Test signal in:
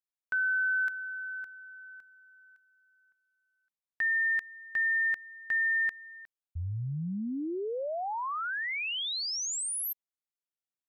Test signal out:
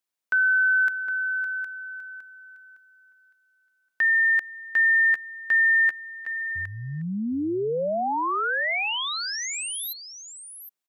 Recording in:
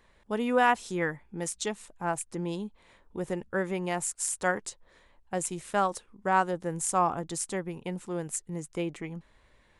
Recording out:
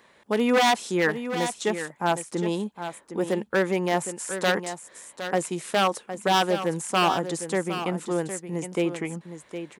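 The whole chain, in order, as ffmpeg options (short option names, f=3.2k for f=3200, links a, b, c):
-filter_complex "[0:a]acrossover=split=2500[a][b];[b]acompressor=threshold=-40dB:ratio=4:attack=1:release=60[c];[a][c]amix=inputs=2:normalize=0,aeval=exprs='0.0794*(abs(mod(val(0)/0.0794+3,4)-2)-1)':c=same,highpass=190,asplit=2[d][e];[e]aecho=0:1:762:0.316[f];[d][f]amix=inputs=2:normalize=0,volume=8dB"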